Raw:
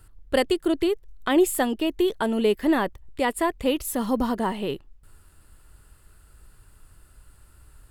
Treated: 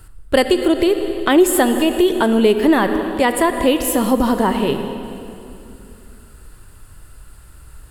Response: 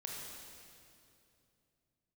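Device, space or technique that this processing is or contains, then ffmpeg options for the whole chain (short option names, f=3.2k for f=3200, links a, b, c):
ducked reverb: -filter_complex "[0:a]asplit=3[a][b][c];[1:a]atrim=start_sample=2205[d];[b][d]afir=irnorm=-1:irlink=0[e];[c]apad=whole_len=348590[f];[e][f]sidechaincompress=threshold=-24dB:ratio=8:attack=22:release=174,volume=0dB[g];[a][g]amix=inputs=2:normalize=0,volume=5.5dB"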